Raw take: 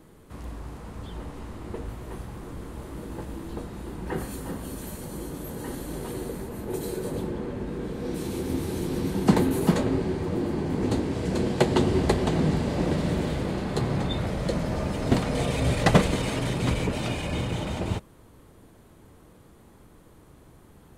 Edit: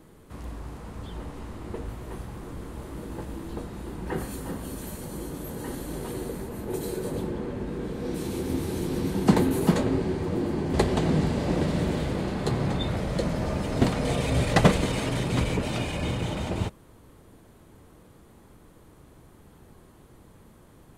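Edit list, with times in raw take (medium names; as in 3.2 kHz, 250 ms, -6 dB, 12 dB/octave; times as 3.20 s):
10.74–12.04 s: delete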